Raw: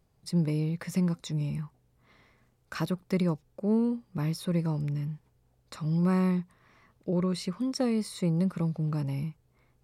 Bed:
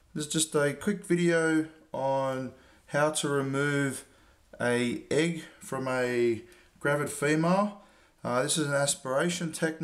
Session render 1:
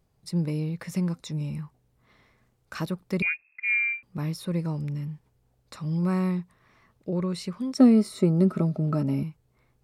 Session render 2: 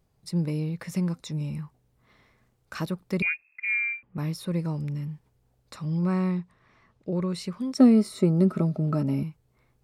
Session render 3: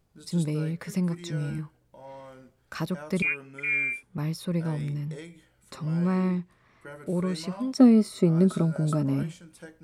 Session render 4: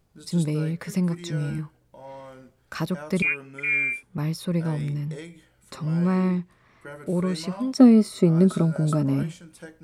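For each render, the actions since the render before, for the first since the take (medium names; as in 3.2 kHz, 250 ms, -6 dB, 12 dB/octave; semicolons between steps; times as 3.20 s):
3.22–4.03 s: frequency inversion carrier 2.6 kHz; 7.78–9.23 s: small resonant body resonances 260/380/620/1300 Hz, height 15 dB, ringing for 55 ms
3.65–4.18 s: low-pass 2.5 kHz 24 dB/octave; 5.85–7.11 s: distance through air 50 m
add bed -16.5 dB
trim +3 dB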